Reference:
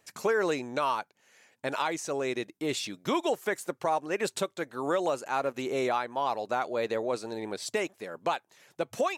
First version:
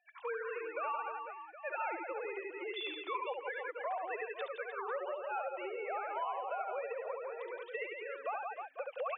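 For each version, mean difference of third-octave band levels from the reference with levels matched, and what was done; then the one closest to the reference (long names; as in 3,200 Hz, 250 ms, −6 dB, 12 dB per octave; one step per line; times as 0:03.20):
15.0 dB: three sine waves on the formant tracks
reverse bouncing-ball delay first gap 70 ms, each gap 1.4×, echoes 5
downward compressor 6 to 1, threshold −31 dBFS, peak gain reduction 11.5 dB
high-pass filter 1,100 Hz 6 dB per octave
level +1 dB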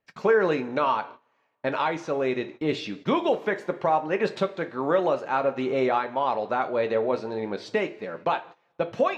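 6.0 dB: low-shelf EQ 73 Hz +5.5 dB
coupled-rooms reverb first 0.26 s, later 1.7 s, from −18 dB, DRR 7 dB
noise gate −45 dBFS, range −17 dB
high-frequency loss of the air 250 metres
level +5 dB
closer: second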